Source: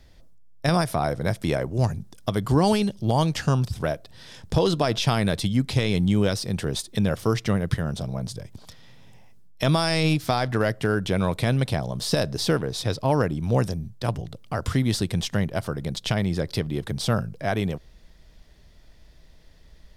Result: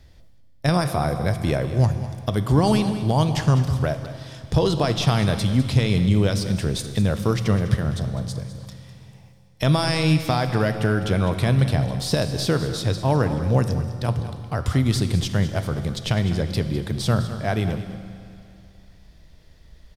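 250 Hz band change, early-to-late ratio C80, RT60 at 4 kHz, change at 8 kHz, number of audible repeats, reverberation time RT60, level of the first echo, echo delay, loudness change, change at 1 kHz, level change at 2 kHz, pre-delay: +2.0 dB, 9.0 dB, 2.6 s, +0.5 dB, 1, 2.6 s, -13.5 dB, 0.203 s, +2.5 dB, +1.0 dB, +0.5 dB, 9 ms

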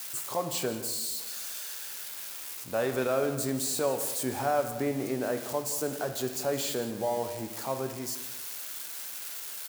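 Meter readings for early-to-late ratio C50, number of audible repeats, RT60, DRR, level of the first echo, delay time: 8.5 dB, 1, 1.3 s, 6.5 dB, -15.5 dB, 0.168 s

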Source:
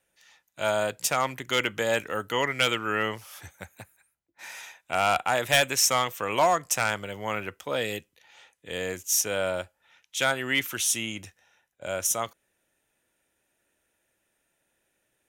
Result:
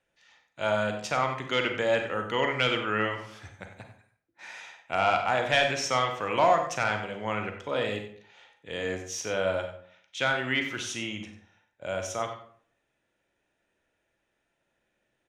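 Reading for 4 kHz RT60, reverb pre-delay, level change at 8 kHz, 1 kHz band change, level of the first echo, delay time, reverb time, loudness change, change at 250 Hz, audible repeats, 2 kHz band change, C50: 0.35 s, 34 ms, -12.0 dB, 0.0 dB, -12.0 dB, 94 ms, 0.55 s, -2.0 dB, +1.0 dB, 1, -1.0 dB, 7.0 dB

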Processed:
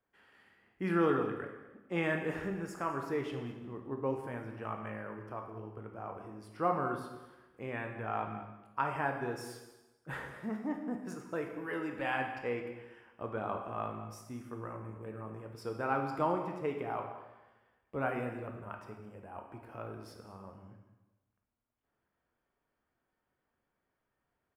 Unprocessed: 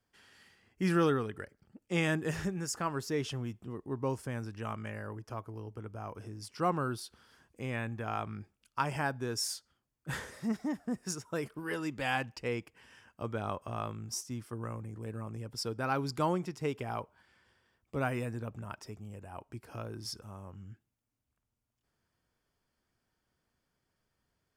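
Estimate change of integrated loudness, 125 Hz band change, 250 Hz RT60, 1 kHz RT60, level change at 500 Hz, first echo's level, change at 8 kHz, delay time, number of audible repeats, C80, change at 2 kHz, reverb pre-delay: -1.5 dB, -5.5 dB, 1.1 s, 1.1 s, +0.5 dB, -16.5 dB, -16.0 dB, 0.213 s, 1, 7.5 dB, -1.0 dB, 6 ms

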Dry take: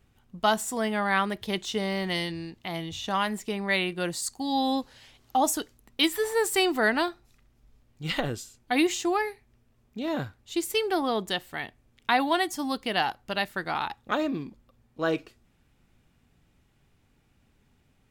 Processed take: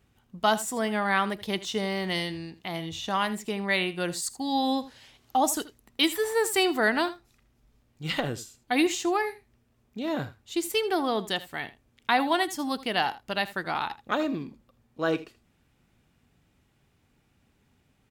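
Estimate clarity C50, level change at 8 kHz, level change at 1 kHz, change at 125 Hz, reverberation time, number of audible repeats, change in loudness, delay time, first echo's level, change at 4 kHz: none, 0.0 dB, 0.0 dB, -0.5 dB, none, 1, 0.0 dB, 80 ms, -16.5 dB, 0.0 dB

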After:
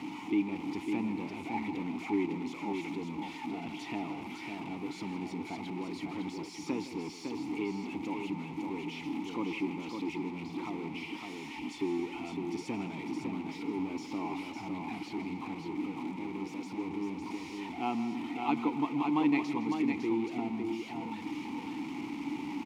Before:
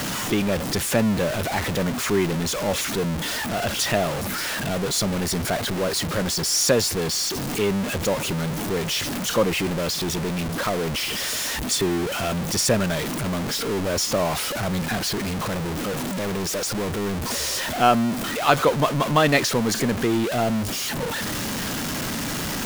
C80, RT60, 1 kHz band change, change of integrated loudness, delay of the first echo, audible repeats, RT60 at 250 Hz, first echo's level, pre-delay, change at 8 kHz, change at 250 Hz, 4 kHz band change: none, none, -12.5 dB, -13.0 dB, 0.16 s, 3, none, -13.5 dB, none, -30.0 dB, -7.0 dB, -22.0 dB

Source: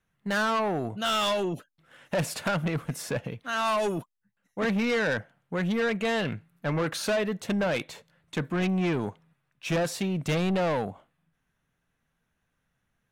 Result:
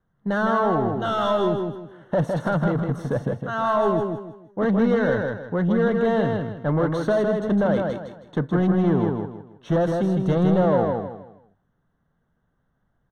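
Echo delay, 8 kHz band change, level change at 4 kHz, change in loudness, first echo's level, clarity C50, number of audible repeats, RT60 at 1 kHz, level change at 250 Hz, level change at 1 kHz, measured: 0.159 s, under -10 dB, -6.5 dB, +6.0 dB, -4.0 dB, none, 4, none, +7.5 dB, +5.5 dB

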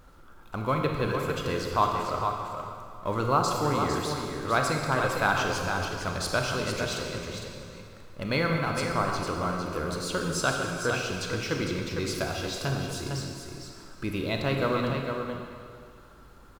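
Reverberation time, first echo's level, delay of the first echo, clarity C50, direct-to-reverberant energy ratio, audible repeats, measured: 2.2 s, -6.5 dB, 0.455 s, 1.0 dB, 0.0 dB, 1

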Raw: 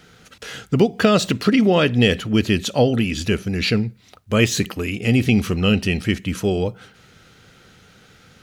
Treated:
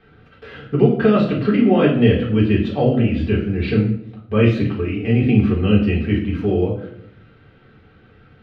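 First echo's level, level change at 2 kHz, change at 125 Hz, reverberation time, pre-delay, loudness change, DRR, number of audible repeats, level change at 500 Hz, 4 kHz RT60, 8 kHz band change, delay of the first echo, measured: none, -4.0 dB, +3.5 dB, 0.70 s, 3 ms, +1.5 dB, -5.0 dB, none, +2.0 dB, 0.50 s, under -30 dB, none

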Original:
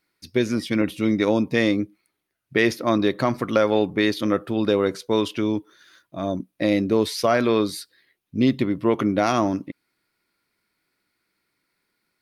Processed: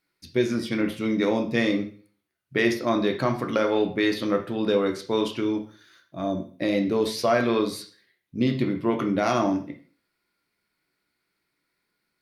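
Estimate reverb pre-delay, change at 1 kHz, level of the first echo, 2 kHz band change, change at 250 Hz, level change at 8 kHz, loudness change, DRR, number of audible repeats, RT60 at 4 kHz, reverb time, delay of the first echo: 6 ms, -2.5 dB, none, -2.0 dB, -3.0 dB, -3.5 dB, -2.5 dB, 3.5 dB, none, 0.40 s, 0.40 s, none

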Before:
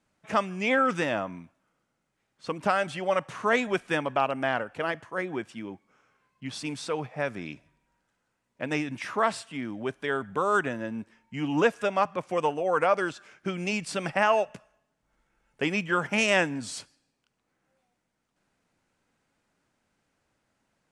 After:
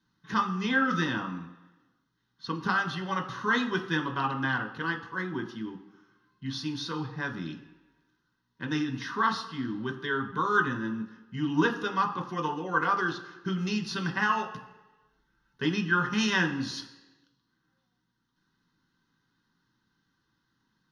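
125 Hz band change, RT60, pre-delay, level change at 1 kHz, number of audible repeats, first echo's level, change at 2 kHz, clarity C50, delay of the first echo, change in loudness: +3.5 dB, 1.1 s, 3 ms, -1.0 dB, none, none, +0.5 dB, 11.0 dB, none, -1.5 dB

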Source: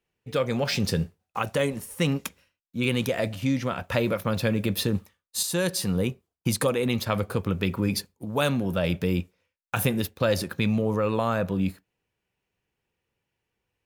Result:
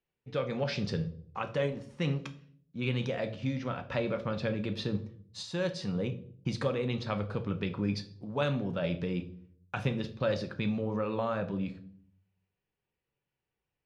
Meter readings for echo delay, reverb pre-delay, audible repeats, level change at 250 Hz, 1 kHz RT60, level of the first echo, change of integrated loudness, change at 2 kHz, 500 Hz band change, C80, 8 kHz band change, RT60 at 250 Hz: none, 5 ms, none, -7.0 dB, 0.45 s, none, -7.0 dB, -8.0 dB, -6.0 dB, 18.0 dB, -20.5 dB, 0.75 s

